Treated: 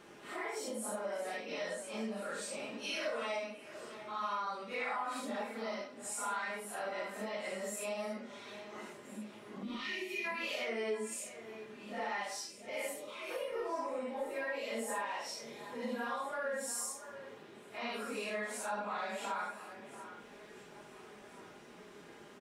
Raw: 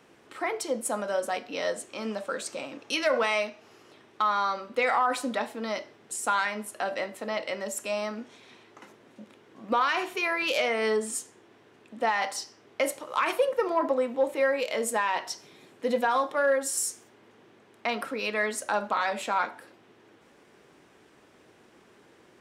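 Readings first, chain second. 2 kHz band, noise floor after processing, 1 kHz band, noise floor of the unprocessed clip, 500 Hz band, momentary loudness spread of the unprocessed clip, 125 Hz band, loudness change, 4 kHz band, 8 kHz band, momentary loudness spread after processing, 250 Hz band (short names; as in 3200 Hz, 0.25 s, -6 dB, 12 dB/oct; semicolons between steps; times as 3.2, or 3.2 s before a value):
-10.0 dB, -55 dBFS, -11.5 dB, -59 dBFS, -11.0 dB, 10 LU, n/a, -11.0 dB, -9.0 dB, -8.0 dB, 14 LU, -8.0 dB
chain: phase scrambler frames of 0.2 s; spectral gain 9.63–10.24, 430–1800 Hz -20 dB; comb 4.9 ms, depth 40%; compressor 2.5:1, threshold -45 dBFS, peak gain reduction 18.5 dB; spectral gain 12.48–13.31, 650–2000 Hz -14 dB; echo with dull and thin repeats by turns 0.689 s, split 2400 Hz, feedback 59%, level -12.5 dB; gain +2 dB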